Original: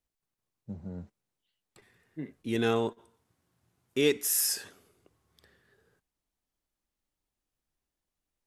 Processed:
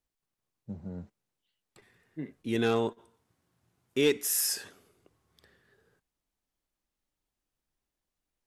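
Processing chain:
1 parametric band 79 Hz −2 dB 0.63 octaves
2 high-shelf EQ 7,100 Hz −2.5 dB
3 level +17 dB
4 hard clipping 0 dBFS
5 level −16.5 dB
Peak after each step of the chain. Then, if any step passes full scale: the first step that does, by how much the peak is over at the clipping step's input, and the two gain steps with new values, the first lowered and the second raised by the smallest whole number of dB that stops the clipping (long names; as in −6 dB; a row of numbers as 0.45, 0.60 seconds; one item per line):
−13.5, −13.5, +3.5, 0.0, −16.5 dBFS
step 3, 3.5 dB
step 3 +13 dB, step 5 −12.5 dB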